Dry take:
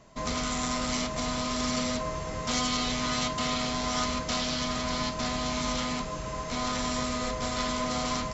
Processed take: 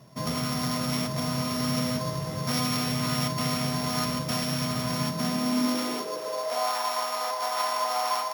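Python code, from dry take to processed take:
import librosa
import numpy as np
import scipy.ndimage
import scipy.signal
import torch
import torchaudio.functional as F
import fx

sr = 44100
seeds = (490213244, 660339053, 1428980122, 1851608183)

y = np.r_[np.sort(x[:len(x) // 8 * 8].reshape(-1, 8), axis=1).ravel(), x[len(x) // 8 * 8:]]
y = fx.filter_sweep_highpass(y, sr, from_hz=130.0, to_hz=810.0, start_s=4.98, end_s=6.78, q=3.7)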